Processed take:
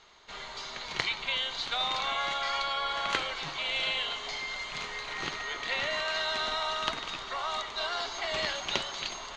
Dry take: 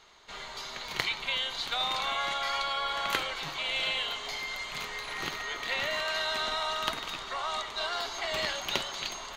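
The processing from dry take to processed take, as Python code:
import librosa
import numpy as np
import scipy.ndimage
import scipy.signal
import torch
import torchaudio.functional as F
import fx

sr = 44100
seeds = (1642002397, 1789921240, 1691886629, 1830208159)

y = scipy.signal.sosfilt(scipy.signal.butter(4, 7200.0, 'lowpass', fs=sr, output='sos'), x)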